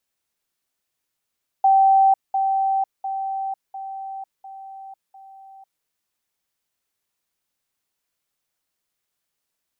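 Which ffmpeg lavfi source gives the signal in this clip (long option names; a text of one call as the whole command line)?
ffmpeg -f lavfi -i "aevalsrc='pow(10,(-11.5-6*floor(t/0.7))/20)*sin(2*PI*776*t)*clip(min(mod(t,0.7),0.5-mod(t,0.7))/0.005,0,1)':duration=4.2:sample_rate=44100" out.wav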